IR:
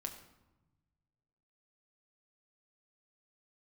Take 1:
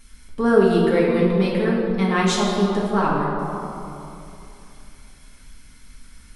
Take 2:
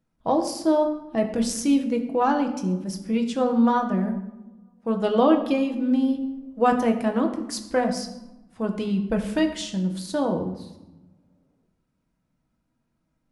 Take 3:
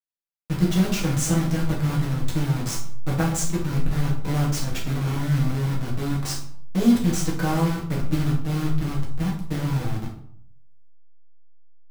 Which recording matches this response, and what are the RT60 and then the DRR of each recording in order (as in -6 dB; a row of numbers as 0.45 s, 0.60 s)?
2; 2.9 s, 1.0 s, 0.60 s; -5.5 dB, 3.5 dB, -4.5 dB